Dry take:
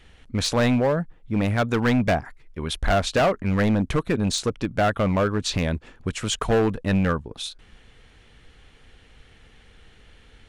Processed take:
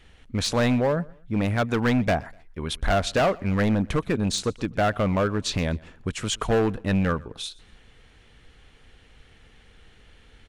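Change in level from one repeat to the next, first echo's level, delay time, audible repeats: -9.5 dB, -24.0 dB, 0.123 s, 2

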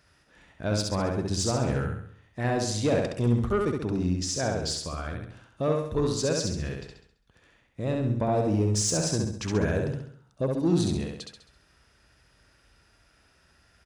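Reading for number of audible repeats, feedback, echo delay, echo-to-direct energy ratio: 5, 47%, 67 ms, -2.0 dB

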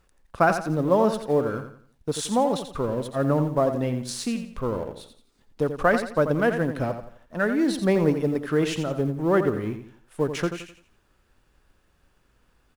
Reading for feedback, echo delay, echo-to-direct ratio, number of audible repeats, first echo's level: 35%, 86 ms, -8.5 dB, 3, -9.0 dB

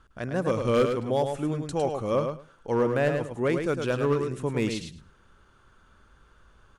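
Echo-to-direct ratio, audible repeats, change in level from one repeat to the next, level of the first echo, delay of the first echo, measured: -6.0 dB, 2, -16.5 dB, -6.0 dB, 0.106 s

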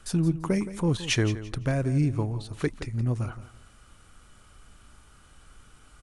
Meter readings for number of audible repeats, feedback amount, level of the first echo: 2, 27%, -14.0 dB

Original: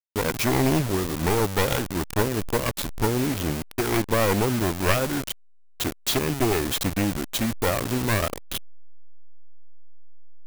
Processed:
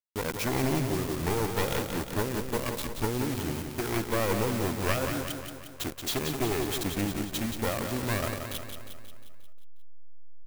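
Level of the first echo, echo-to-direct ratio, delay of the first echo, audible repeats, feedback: -6.5 dB, -5.0 dB, 0.178 s, 6, 56%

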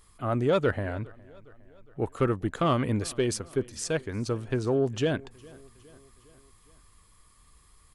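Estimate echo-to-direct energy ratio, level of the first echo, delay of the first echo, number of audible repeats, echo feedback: -22.5 dB, -24.0 dB, 0.41 s, 3, 57%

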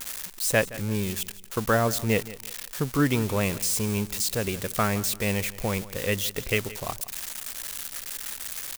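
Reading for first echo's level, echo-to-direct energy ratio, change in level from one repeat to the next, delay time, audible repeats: -17.5 dB, -17.0 dB, -10.5 dB, 0.17 s, 2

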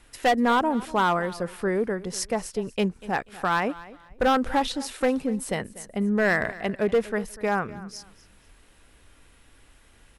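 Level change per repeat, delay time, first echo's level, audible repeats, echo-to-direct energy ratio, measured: -11.5 dB, 0.243 s, -18.5 dB, 2, -18.0 dB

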